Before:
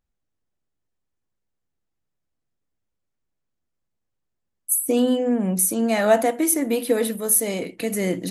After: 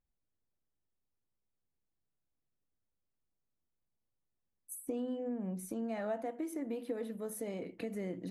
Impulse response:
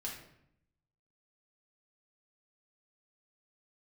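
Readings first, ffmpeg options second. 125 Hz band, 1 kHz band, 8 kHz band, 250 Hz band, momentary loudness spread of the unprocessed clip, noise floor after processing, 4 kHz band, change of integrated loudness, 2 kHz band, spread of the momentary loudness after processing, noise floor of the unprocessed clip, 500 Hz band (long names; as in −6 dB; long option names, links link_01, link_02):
−15.0 dB, −19.5 dB, −28.0 dB, −16.0 dB, 7 LU, −85 dBFS, −24.5 dB, −19.0 dB, −21.5 dB, 4 LU, −78 dBFS, −17.5 dB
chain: -af "lowpass=frequency=1200:poles=1,acompressor=threshold=-32dB:ratio=3,volume=-6.5dB"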